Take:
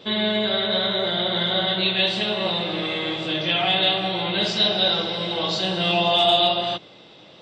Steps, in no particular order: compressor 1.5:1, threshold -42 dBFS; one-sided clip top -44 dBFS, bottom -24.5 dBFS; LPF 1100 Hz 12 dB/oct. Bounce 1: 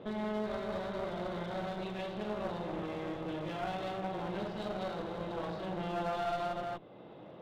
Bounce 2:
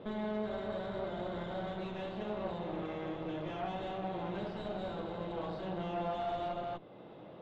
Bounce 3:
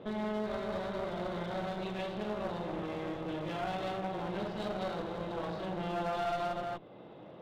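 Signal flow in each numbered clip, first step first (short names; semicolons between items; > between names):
compressor > LPF > one-sided clip; compressor > one-sided clip > LPF; LPF > compressor > one-sided clip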